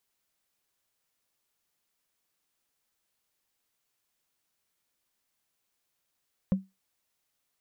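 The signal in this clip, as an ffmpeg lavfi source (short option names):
-f lavfi -i "aevalsrc='0.133*pow(10,-3*t/0.21)*sin(2*PI*191*t)+0.0355*pow(10,-3*t/0.062)*sin(2*PI*526.6*t)+0.00944*pow(10,-3*t/0.028)*sin(2*PI*1032.2*t)+0.00251*pow(10,-3*t/0.015)*sin(2*PI*1706.2*t)+0.000668*pow(10,-3*t/0.009)*sin(2*PI*2547.9*t)':d=0.45:s=44100"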